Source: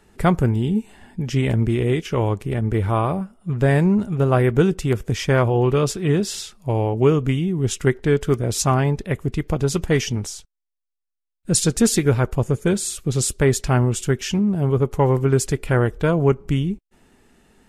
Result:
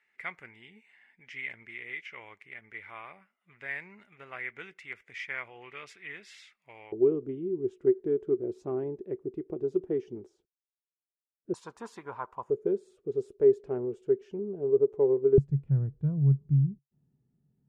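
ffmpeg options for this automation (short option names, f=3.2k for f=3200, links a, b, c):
-af "asetnsamples=n=441:p=0,asendcmd='6.92 bandpass f 370;11.54 bandpass f 1000;12.5 bandpass f 410;15.38 bandpass f 140',bandpass=f=2.1k:t=q:w=7.9:csg=0"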